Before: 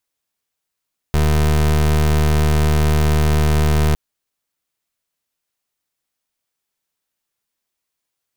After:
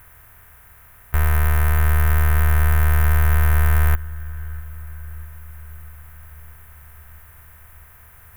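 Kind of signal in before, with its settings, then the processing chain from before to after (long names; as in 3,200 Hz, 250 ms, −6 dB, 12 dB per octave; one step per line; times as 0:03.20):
pulse wave 75.8 Hz, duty 27% −14.5 dBFS 2.81 s
compressor on every frequency bin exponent 0.4
drawn EQ curve 100 Hz 0 dB, 150 Hz −13 dB, 320 Hz −16 dB, 1,700 Hz +4 dB, 4,500 Hz −19 dB, 7,600 Hz −10 dB, 12,000 Hz +6 dB
feedback echo with a low-pass in the loop 647 ms, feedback 63%, low-pass 2,300 Hz, level −20 dB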